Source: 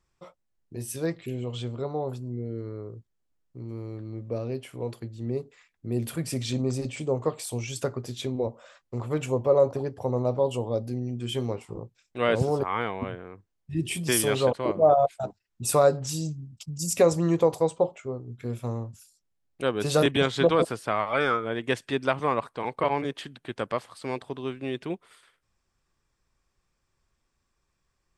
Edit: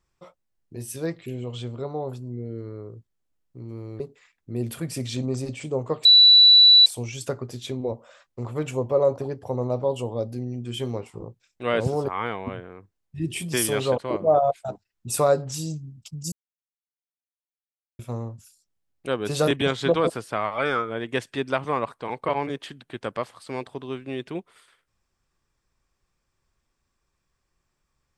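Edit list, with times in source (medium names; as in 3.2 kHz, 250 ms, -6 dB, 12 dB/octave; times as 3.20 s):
4.00–5.36 s: delete
7.41 s: add tone 3.95 kHz -9 dBFS 0.81 s
16.87–18.54 s: mute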